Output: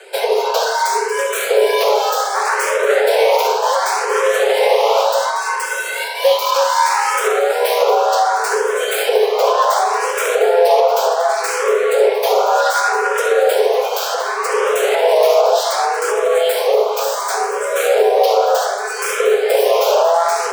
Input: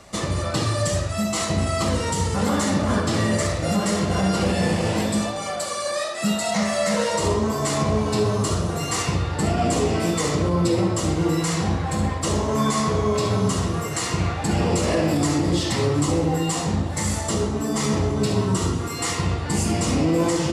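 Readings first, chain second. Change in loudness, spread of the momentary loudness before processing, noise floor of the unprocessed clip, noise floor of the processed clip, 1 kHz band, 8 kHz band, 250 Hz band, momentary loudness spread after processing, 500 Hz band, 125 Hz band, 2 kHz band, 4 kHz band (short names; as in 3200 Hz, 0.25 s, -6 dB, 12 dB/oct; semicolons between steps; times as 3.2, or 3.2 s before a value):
+7.0 dB, 4 LU, -28 dBFS, -22 dBFS, +12.0 dB, +2.5 dB, under -15 dB, 5 LU, +11.5 dB, under -40 dB, +10.5 dB, +6.0 dB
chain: self-modulated delay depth 0.2 ms; high shelf 7500 Hz -5 dB; frequency shift +340 Hz; echo with dull and thin repeats by turns 0.117 s, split 870 Hz, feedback 85%, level -13 dB; maximiser +11.5 dB; endless phaser +0.67 Hz; gain -1 dB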